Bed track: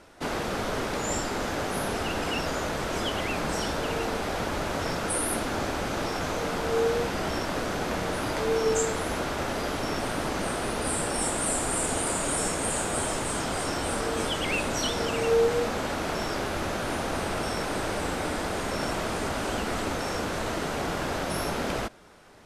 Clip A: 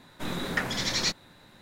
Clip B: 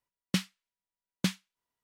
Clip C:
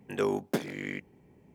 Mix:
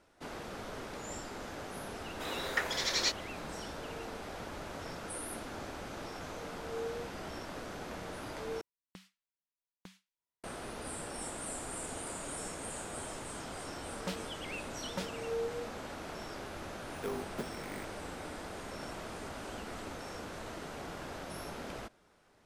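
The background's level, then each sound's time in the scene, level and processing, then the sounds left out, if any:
bed track -13.5 dB
2.00 s: add A -3.5 dB + high-pass 370 Hz 24 dB/octave
8.61 s: replace with B -10.5 dB + compression 8:1, threshold -38 dBFS
13.73 s: add B -4.5 dB + transformer saturation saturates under 950 Hz
16.85 s: add C -11 dB + sample-and-hold 4×

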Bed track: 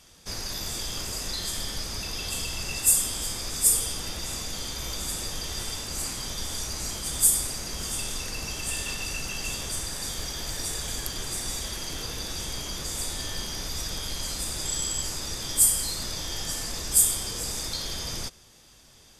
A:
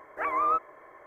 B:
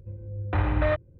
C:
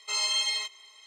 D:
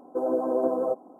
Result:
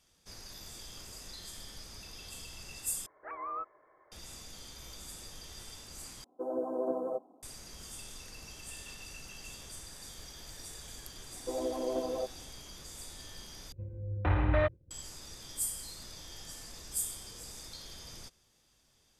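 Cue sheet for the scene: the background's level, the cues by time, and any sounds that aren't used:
bed track -15 dB
3.06 s: replace with A -12.5 dB + low-pass 1.9 kHz
6.24 s: replace with D -8.5 dB + three bands expanded up and down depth 40%
11.32 s: add D -9 dB
13.72 s: replace with B -3.5 dB + expander -47 dBFS
not used: C

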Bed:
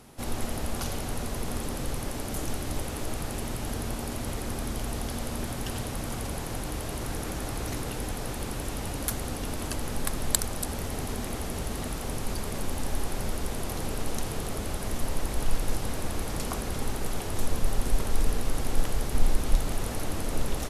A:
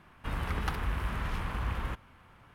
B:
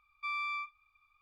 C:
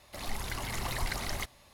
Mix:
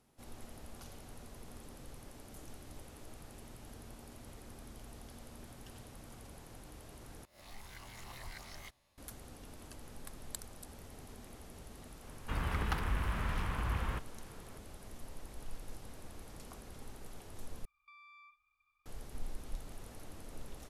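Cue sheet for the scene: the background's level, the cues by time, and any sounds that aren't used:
bed -19 dB
7.25 s: replace with C -16.5 dB + reverse spectral sustain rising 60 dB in 0.38 s
12.04 s: add A -2 dB
17.65 s: replace with B -8.5 dB + compression 12:1, threshold -47 dBFS

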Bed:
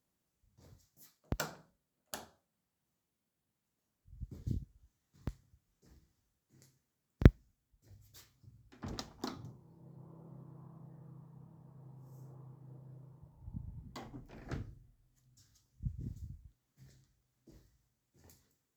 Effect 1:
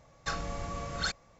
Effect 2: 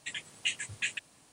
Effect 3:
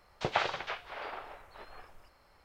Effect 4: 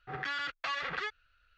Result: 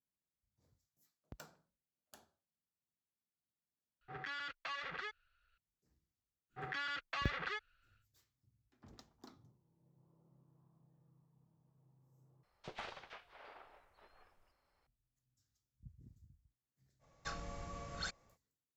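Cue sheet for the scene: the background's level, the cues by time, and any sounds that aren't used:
bed -16.5 dB
4.01 s: replace with 4 -8.5 dB
6.49 s: add 4 -5.5 dB, fades 0.10 s
12.43 s: replace with 3 -13 dB + valve stage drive 24 dB, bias 0.55
16.99 s: add 1 -10 dB, fades 0.05 s
not used: 2

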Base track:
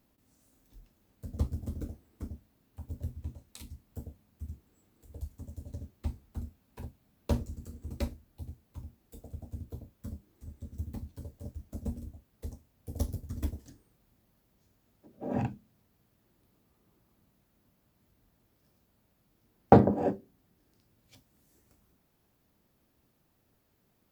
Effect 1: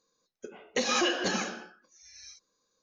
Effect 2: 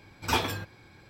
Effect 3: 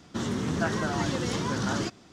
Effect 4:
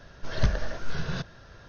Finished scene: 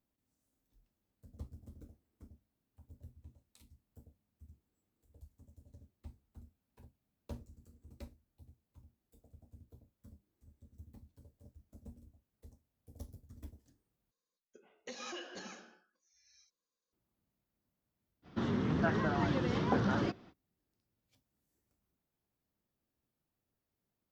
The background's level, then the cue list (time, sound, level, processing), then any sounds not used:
base track -16 dB
14.11 s: replace with 1 -18 dB
18.22 s: add 3 -3 dB, fades 0.05 s + distance through air 250 m
not used: 2, 4

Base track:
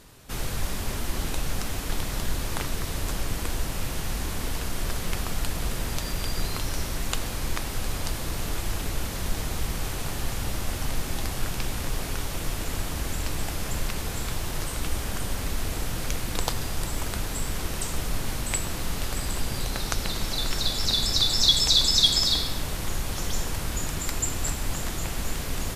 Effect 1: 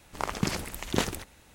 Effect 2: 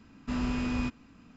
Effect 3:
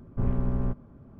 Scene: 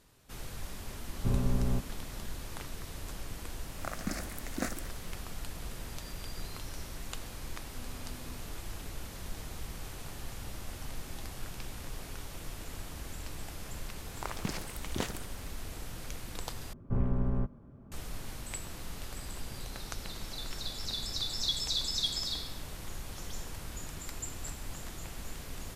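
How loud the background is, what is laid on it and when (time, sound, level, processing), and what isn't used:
base track -12.5 dB
1.07 s: add 3 -2.5 dB
3.64 s: add 1 -4.5 dB + static phaser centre 630 Hz, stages 8
7.48 s: add 2 -13.5 dB + compression, threshold -35 dBFS
14.02 s: add 1 -8 dB
16.73 s: replace with 3 -3 dB

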